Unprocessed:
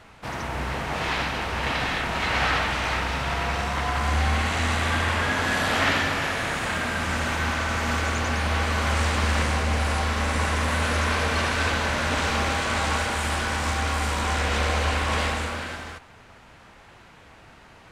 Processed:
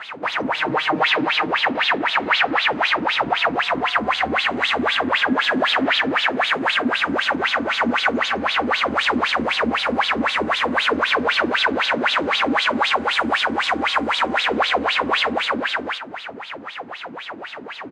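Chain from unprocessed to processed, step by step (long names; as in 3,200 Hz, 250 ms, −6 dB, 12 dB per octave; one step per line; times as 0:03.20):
high-pass filter 100 Hz 12 dB per octave
notch filter 5,600 Hz, Q 19
single-tap delay 275 ms −17 dB
downward compressor 2 to 1, threshold −43 dBFS, peak gain reduction 13.5 dB
LFO wah 3.9 Hz 250–3,800 Hz, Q 6.7
0:00.54–0:01.51: comb filter 6.5 ms, depth 69%
boost into a limiter +36 dB
level −6.5 dB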